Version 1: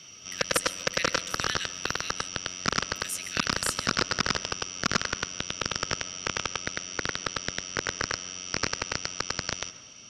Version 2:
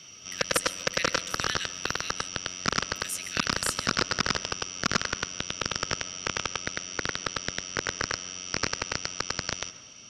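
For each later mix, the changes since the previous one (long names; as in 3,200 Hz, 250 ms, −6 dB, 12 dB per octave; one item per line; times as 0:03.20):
nothing changed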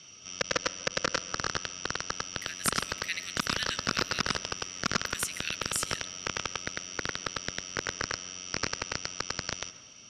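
speech: entry +2.10 s
background −3.0 dB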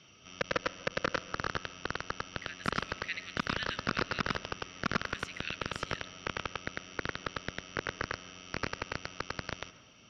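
master: add high-frequency loss of the air 250 metres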